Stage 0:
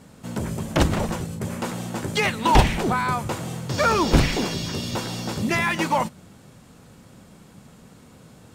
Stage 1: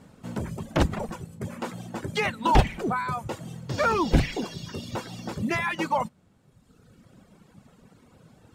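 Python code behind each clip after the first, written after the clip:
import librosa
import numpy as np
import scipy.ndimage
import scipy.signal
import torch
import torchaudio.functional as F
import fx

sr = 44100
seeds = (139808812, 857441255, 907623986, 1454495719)

y = fx.dereverb_blind(x, sr, rt60_s=1.5)
y = fx.high_shelf(y, sr, hz=3800.0, db=-7.0)
y = F.gain(torch.from_numpy(y), -2.5).numpy()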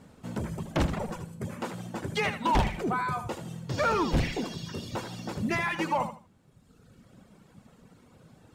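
y = 10.0 ** (-16.5 / 20.0) * np.tanh(x / 10.0 ** (-16.5 / 20.0))
y = fx.echo_feedback(y, sr, ms=78, feedback_pct=24, wet_db=-10.0)
y = F.gain(torch.from_numpy(y), -1.5).numpy()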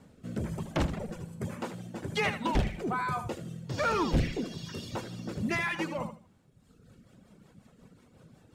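y = fx.rotary_switch(x, sr, hz=1.2, then_hz=5.5, switch_at_s=6.1)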